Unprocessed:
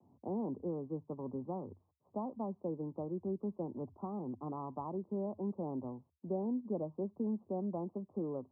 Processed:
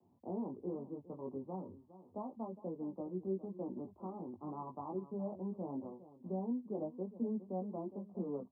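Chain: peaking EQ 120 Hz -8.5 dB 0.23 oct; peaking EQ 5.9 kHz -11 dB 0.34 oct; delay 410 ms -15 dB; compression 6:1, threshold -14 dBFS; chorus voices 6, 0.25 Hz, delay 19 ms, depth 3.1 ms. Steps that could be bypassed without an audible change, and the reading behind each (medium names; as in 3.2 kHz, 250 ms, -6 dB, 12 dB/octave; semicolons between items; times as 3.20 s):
peaking EQ 5.9 kHz: input has nothing above 1.2 kHz; compression, threshold -14 dBFS: peak at its input -26.5 dBFS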